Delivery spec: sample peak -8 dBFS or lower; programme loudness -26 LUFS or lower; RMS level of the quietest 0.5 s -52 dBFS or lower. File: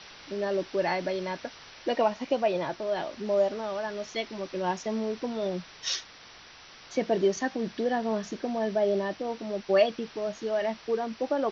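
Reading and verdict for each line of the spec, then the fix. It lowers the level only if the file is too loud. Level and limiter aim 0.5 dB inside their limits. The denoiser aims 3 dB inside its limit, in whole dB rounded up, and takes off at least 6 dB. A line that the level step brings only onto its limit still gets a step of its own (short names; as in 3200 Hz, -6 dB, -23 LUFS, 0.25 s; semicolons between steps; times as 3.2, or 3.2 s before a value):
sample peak -11.5 dBFS: OK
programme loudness -30.0 LUFS: OK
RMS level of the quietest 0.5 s -50 dBFS: fail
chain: denoiser 6 dB, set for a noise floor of -50 dBFS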